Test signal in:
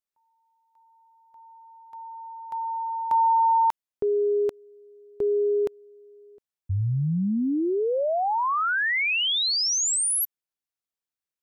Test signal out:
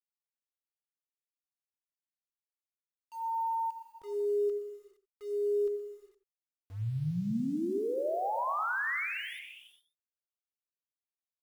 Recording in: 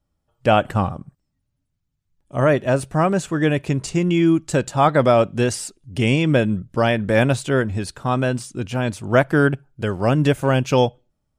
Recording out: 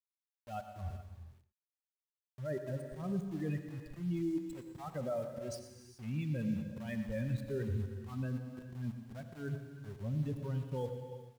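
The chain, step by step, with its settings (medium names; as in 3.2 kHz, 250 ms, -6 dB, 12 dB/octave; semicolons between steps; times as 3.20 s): expander on every frequency bin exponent 3; low-pass 1.1 kHz 6 dB/octave; level-controlled noise filter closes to 420 Hz, open at -25 dBFS; bass shelf 180 Hz +10.5 dB; reverse; compression 6:1, threshold -29 dBFS; reverse; peak limiter -30 dBFS; slow attack 152 ms; small samples zeroed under -51 dBFS; on a send: delay 119 ms -13.5 dB; on the sum: gated-style reverb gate 450 ms flat, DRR 7 dB; bit-crushed delay 88 ms, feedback 35%, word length 10-bit, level -15 dB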